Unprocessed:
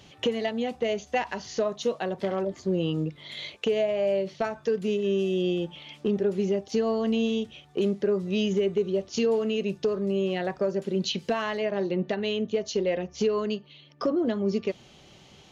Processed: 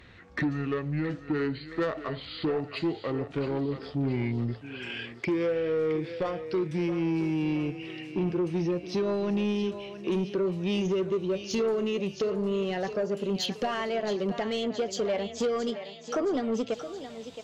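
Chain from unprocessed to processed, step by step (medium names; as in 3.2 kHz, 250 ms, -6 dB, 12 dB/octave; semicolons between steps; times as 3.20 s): gliding tape speed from 61% -> 117%; thinning echo 670 ms, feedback 57%, high-pass 420 Hz, level -11 dB; saturation -21.5 dBFS, distortion -16 dB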